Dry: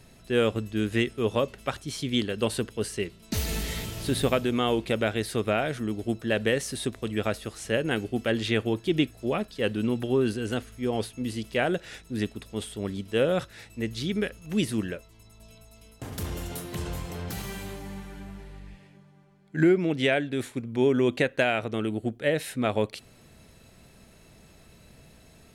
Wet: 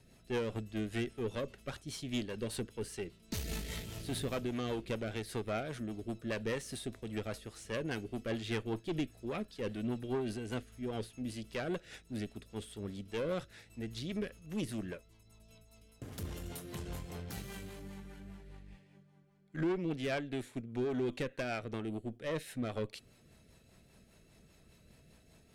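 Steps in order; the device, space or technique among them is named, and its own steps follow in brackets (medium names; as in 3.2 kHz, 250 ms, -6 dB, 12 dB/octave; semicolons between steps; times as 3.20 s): overdriven rotary cabinet (valve stage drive 23 dB, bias 0.5; rotary cabinet horn 5 Hz); trim -5 dB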